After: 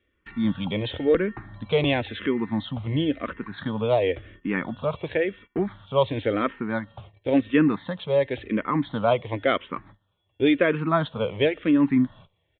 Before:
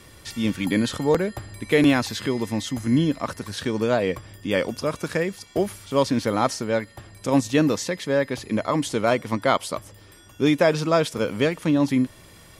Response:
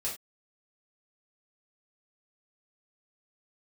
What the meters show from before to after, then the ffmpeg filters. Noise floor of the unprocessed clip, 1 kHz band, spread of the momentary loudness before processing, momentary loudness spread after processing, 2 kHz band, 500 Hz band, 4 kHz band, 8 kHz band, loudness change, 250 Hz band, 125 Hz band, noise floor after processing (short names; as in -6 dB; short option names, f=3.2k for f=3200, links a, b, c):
-49 dBFS, -2.5 dB, 9 LU, 10 LU, -2.0 dB, -1.0 dB, -3.0 dB, under -40 dB, -1.5 dB, -1.5 dB, -2.0 dB, -72 dBFS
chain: -filter_complex "[0:a]aresample=8000,aresample=44100,agate=range=-22dB:threshold=-43dB:ratio=16:detection=peak,asplit=2[a][b];[b]afreqshift=-0.95[c];[a][c]amix=inputs=2:normalize=1,volume=1.5dB"